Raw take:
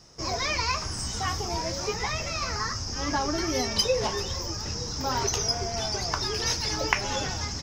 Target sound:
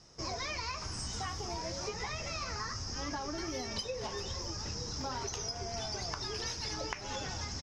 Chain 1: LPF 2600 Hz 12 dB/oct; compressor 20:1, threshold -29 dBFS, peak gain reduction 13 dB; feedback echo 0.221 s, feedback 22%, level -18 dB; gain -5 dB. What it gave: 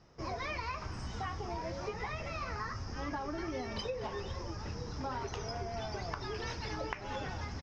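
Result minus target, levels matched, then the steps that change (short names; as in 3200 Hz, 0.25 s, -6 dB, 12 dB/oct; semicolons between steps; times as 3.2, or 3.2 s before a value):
8000 Hz band -11.0 dB
change: LPF 8900 Hz 12 dB/oct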